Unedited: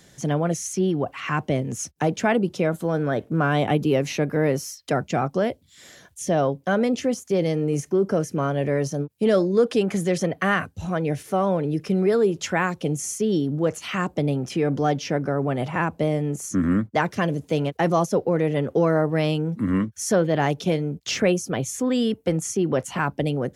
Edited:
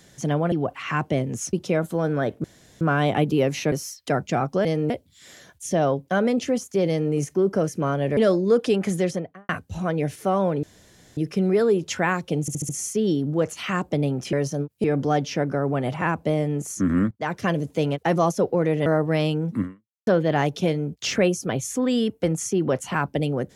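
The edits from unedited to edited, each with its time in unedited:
0.52–0.9 cut
1.91–2.43 cut
3.34 insert room tone 0.37 s
4.25–4.53 cut
7.44–7.69 copy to 5.46
8.73–9.24 move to 14.58
10.03–10.56 studio fade out
11.7 insert room tone 0.54 s
12.94 stutter 0.07 s, 5 plays
16.85–17.19 fade in, from -16.5 dB
18.6–18.9 cut
19.66–20.11 fade out exponential

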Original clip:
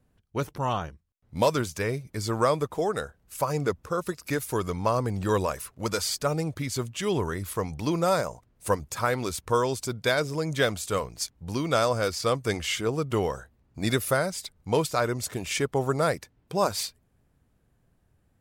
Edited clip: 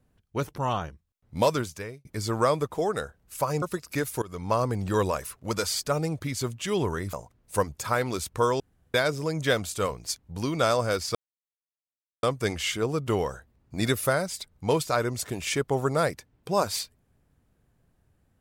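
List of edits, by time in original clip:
1.51–2.05 fade out
3.62–3.97 cut
4.57–4.88 fade in, from -20.5 dB
7.48–8.25 cut
9.72–10.06 room tone
12.27 insert silence 1.08 s

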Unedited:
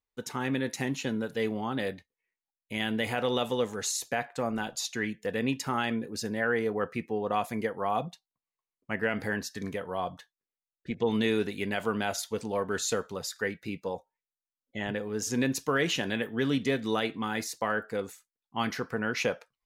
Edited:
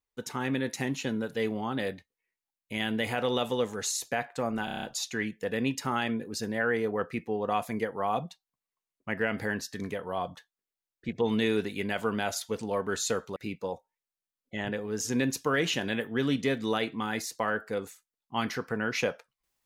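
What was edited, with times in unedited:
4.65 stutter 0.03 s, 7 plays
13.18–13.58 cut

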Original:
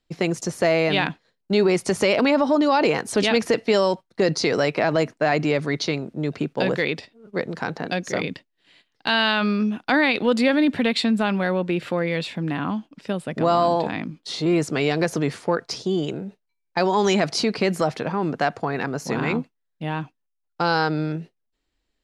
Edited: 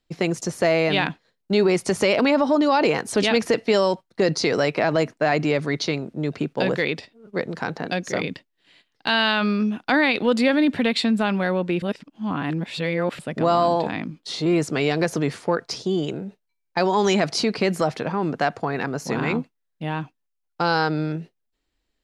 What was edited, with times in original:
11.82–13.19 reverse

